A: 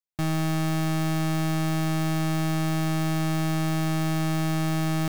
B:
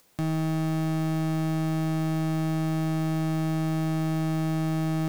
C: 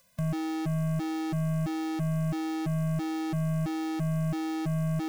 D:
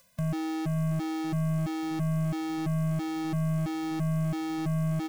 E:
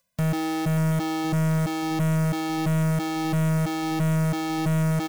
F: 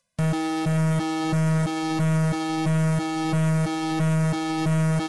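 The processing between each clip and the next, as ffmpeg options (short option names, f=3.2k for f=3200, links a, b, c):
-af "equalizer=f=300:w=0.35:g=8.5,acompressor=mode=upward:threshold=-25dB:ratio=2.5,volume=-8dB"
-af "afftfilt=real='re*gt(sin(2*PI*1.5*pts/sr)*(1-2*mod(floor(b*sr/1024/240),2)),0)':imag='im*gt(sin(2*PI*1.5*pts/sr)*(1-2*mod(floor(b*sr/1024/240),2)),0)':win_size=1024:overlap=0.75"
-af "areverse,acompressor=mode=upward:threshold=-32dB:ratio=2.5,areverse,aecho=1:1:584|1168|1752|2336:0.158|0.0682|0.0293|0.0126"
-af "acrusher=bits=7:mode=log:mix=0:aa=0.000001,aeval=exprs='0.1*(cos(1*acos(clip(val(0)/0.1,-1,1)))-cos(1*PI/2))+0.0112*(cos(4*acos(clip(val(0)/0.1,-1,1)))-cos(4*PI/2))+0.0398*(cos(5*acos(clip(val(0)/0.1,-1,1)))-cos(5*PI/2))+0.00891*(cos(6*acos(clip(val(0)/0.1,-1,1)))-cos(6*PI/2))+0.0398*(cos(7*acos(clip(val(0)/0.1,-1,1)))-cos(7*PI/2))':c=same,volume=2dB"
-af "volume=1dB" -ar 24000 -c:a aac -b:a 32k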